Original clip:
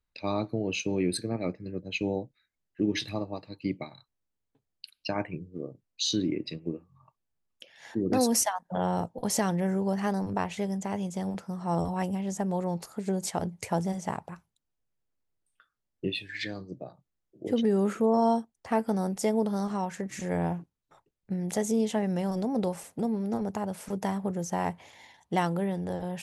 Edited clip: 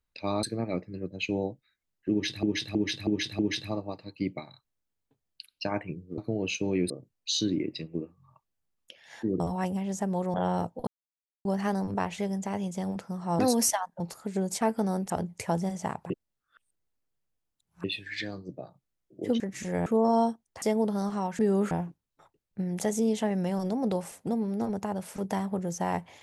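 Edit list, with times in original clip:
0.43–1.15 move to 5.62
2.83–3.15 loop, 5 plays
8.12–8.73 swap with 11.78–12.72
9.26–9.84 mute
14.33–16.07 reverse
17.63–17.95 swap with 19.97–20.43
18.71–19.2 move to 13.33

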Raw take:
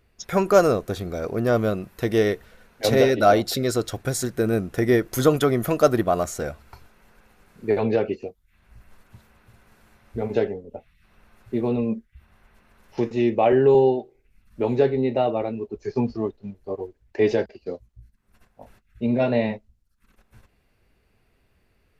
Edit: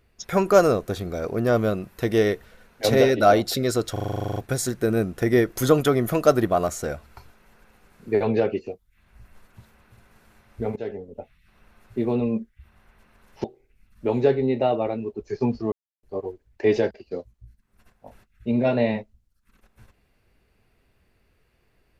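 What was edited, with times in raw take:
3.92 stutter 0.04 s, 12 plays
10.32–10.67 fade in, from -18.5 dB
13–13.99 cut
16.27–16.58 mute

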